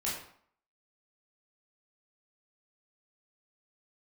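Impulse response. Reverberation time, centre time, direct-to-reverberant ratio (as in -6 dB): 0.60 s, 46 ms, -6.5 dB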